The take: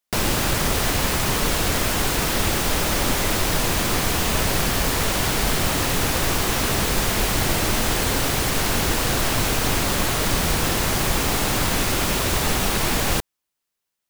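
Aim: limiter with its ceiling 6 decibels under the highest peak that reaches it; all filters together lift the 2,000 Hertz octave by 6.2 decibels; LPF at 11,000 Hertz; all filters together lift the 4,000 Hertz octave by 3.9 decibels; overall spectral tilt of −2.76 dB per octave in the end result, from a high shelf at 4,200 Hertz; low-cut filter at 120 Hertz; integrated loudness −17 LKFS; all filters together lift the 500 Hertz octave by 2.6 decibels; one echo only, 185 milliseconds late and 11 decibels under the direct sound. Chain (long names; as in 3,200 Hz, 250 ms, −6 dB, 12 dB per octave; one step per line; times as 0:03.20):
high-pass filter 120 Hz
low-pass filter 11,000 Hz
parametric band 500 Hz +3 dB
parametric band 2,000 Hz +7.5 dB
parametric band 4,000 Hz +7 dB
high-shelf EQ 4,200 Hz −8 dB
brickwall limiter −13.5 dBFS
single-tap delay 185 ms −11 dB
level +4.5 dB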